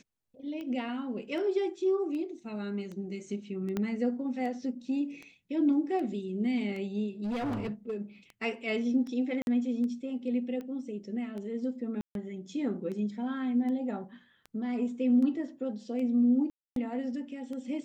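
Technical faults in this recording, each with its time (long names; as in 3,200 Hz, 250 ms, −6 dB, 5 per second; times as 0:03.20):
scratch tick 78 rpm −30 dBFS
0:03.77: click −19 dBFS
0:07.23–0:07.95: clipping −29.5 dBFS
0:09.42–0:09.47: drop-out 51 ms
0:12.01–0:12.15: drop-out 142 ms
0:16.50–0:16.76: drop-out 262 ms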